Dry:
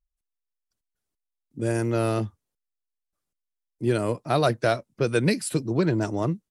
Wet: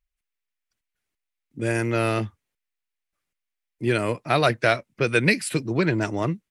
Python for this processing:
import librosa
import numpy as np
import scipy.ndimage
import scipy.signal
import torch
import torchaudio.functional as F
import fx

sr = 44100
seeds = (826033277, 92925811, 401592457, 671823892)

y = fx.peak_eq(x, sr, hz=2200.0, db=11.5, octaves=1.2)